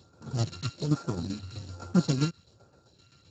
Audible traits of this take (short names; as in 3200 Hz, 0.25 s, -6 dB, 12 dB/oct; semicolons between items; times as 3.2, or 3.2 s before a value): a buzz of ramps at a fixed pitch in blocks of 32 samples; phasing stages 2, 1.2 Hz, lowest notch 700–3100 Hz; tremolo saw down 7.7 Hz, depth 65%; Speex